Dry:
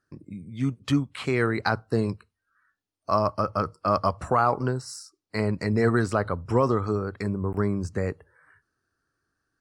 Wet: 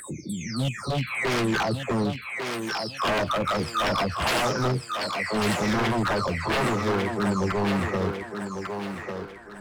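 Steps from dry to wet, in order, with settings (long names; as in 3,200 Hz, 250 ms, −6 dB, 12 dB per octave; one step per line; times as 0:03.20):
every frequency bin delayed by itself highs early, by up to 588 ms
in parallel at −1.5 dB: upward compression, threshold −27 dBFS
on the sum: wave folding −19.5 dBFS
feedback echo with a high-pass in the loop 1,148 ms, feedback 38%, high-pass 250 Hz, level −4.5 dB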